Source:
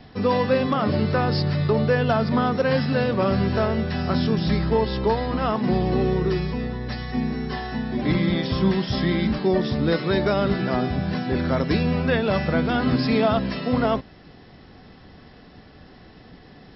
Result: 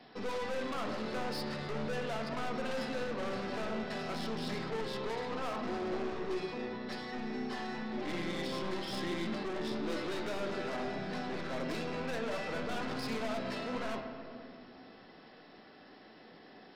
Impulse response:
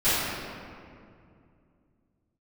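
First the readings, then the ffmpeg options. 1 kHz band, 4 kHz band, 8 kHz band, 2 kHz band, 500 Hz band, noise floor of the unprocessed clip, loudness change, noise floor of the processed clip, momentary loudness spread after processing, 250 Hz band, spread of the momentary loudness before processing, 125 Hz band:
-12.5 dB, -10.5 dB, n/a, -11.0 dB, -14.0 dB, -48 dBFS, -15.0 dB, -56 dBFS, 17 LU, -16.5 dB, 5 LU, -22.0 dB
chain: -filter_complex "[0:a]highpass=320,aeval=exprs='(tanh(35.5*val(0)+0.3)-tanh(0.3))/35.5':c=same,asplit=2[a][b];[1:a]atrim=start_sample=2205,lowpass=4.2k[c];[b][c]afir=irnorm=-1:irlink=0,volume=-20dB[d];[a][d]amix=inputs=2:normalize=0,volume=-6dB"

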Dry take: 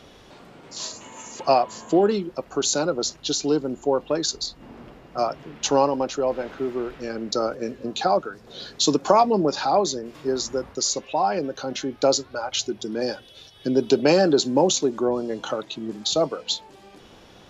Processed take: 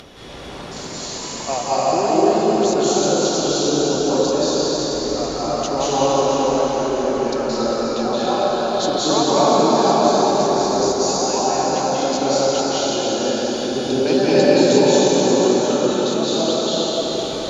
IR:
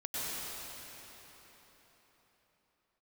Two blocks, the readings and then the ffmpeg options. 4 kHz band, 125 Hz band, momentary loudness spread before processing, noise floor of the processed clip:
+5.5 dB, +7.0 dB, 12 LU, -30 dBFS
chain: -filter_complex "[0:a]acompressor=mode=upward:threshold=-25dB:ratio=2.5[a];[1:a]atrim=start_sample=2205,asetrate=24255,aresample=44100[b];[a][b]afir=irnorm=-1:irlink=0,volume=-4.5dB"

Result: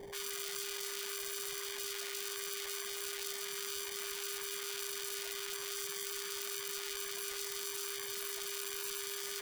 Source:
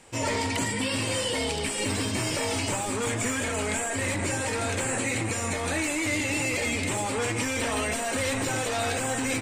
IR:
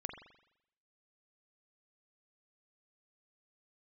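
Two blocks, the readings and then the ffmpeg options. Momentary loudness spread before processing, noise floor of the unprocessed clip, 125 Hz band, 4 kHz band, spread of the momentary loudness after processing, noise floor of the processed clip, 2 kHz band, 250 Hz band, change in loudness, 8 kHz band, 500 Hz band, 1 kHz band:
2 LU, -30 dBFS, under -35 dB, -7.5 dB, 1 LU, -42 dBFS, -15.5 dB, -27.5 dB, -11.0 dB, -9.5 dB, -14.5 dB, -18.5 dB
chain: -af "acrusher=samples=33:mix=1:aa=0.000001,acontrast=48,afftfilt=real='re*lt(hypot(re,im),0.0447)':imag='im*lt(hypot(re,im),0.0447)':win_size=1024:overlap=0.75,aeval=exprs='val(0)+0.00891*sin(2*PI*400*n/s)':c=same,volume=-5.5dB"

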